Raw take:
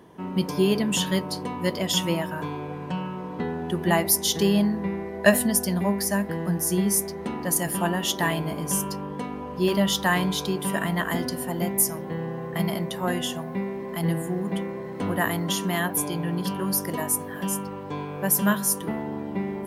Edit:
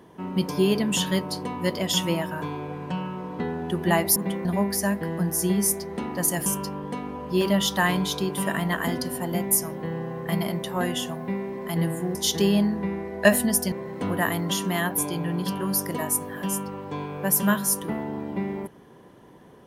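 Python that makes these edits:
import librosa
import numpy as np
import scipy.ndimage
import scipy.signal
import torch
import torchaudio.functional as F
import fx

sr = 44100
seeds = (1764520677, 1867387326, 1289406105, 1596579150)

y = fx.edit(x, sr, fx.swap(start_s=4.16, length_s=1.57, other_s=14.42, other_length_s=0.29),
    fx.cut(start_s=7.74, length_s=0.99), tone=tone)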